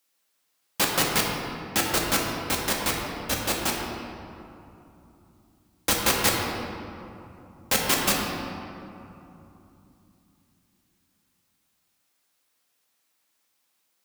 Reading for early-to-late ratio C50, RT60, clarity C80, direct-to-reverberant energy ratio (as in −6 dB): 1.0 dB, 3.0 s, 2.0 dB, −1.5 dB